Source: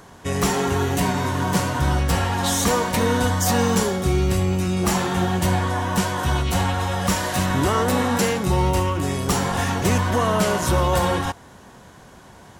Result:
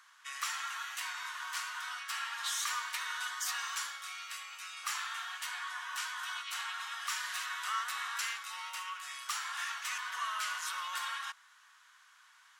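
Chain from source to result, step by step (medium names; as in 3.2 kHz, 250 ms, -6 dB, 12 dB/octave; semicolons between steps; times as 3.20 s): Chebyshev high-pass 1.2 kHz, order 4; treble shelf 7.2 kHz -7.5 dB; trim -8 dB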